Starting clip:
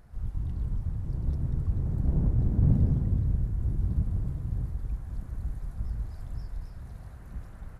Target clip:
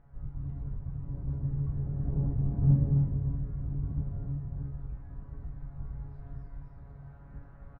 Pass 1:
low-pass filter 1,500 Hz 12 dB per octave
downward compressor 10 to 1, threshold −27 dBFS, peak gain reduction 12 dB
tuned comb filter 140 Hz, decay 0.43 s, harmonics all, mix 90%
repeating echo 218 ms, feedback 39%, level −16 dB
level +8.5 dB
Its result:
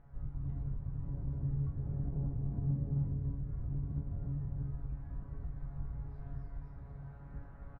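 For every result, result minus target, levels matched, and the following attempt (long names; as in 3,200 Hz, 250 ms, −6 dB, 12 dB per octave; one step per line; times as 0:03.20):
downward compressor: peak gain reduction +12 dB; echo 91 ms early
low-pass filter 1,500 Hz 12 dB per octave
tuned comb filter 140 Hz, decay 0.43 s, harmonics all, mix 90%
repeating echo 218 ms, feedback 39%, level −16 dB
level +8.5 dB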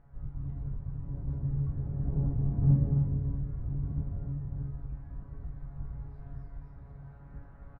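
echo 91 ms early
low-pass filter 1,500 Hz 12 dB per octave
tuned comb filter 140 Hz, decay 0.43 s, harmonics all, mix 90%
repeating echo 309 ms, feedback 39%, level −16 dB
level +8.5 dB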